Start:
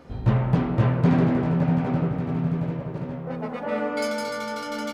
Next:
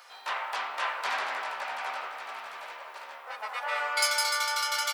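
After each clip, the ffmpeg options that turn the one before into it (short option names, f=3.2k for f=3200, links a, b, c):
-af "highpass=f=880:w=0.5412,highpass=f=880:w=1.3066,highshelf=f=3.2k:g=11,bandreject=f=6.6k:w=26,volume=2.5dB"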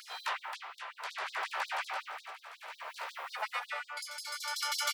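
-af "acompressor=threshold=-37dB:ratio=3,tremolo=f=0.61:d=0.74,afftfilt=real='re*gte(b*sr/1024,260*pow(3700/260,0.5+0.5*sin(2*PI*5.5*pts/sr)))':imag='im*gte(b*sr/1024,260*pow(3700/260,0.5+0.5*sin(2*PI*5.5*pts/sr)))':win_size=1024:overlap=0.75,volume=6dB"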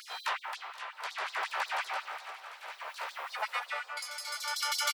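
-af "aecho=1:1:475|950|1425|1900|2375:0.126|0.068|0.0367|0.0198|0.0107,volume=2dB"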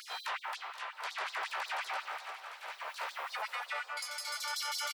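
-af "alimiter=level_in=4dB:limit=-24dB:level=0:latency=1:release=17,volume=-4dB"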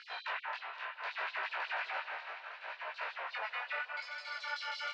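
-af "flanger=delay=17.5:depth=7.1:speed=0.71,highpass=280,equalizer=f=360:t=q:w=4:g=-7,equalizer=f=510:t=q:w=4:g=-5,equalizer=f=810:t=q:w=4:g=-8,equalizer=f=1.2k:t=q:w=4:g=-9,equalizer=f=2.1k:t=q:w=4:g=-5,equalizer=f=3.3k:t=q:w=4:g=-8,lowpass=f=3.4k:w=0.5412,lowpass=f=3.4k:w=1.3066,volume=8dB"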